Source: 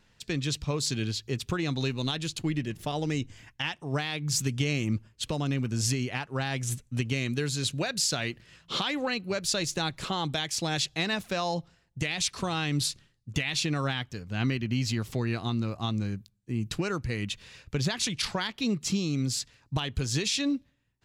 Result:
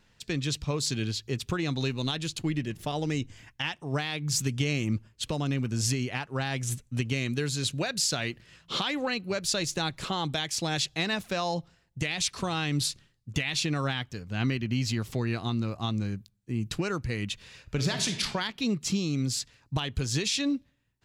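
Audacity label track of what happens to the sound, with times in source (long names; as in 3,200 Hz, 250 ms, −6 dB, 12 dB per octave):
17.630000	18.220000	thrown reverb, RT60 0.84 s, DRR 6 dB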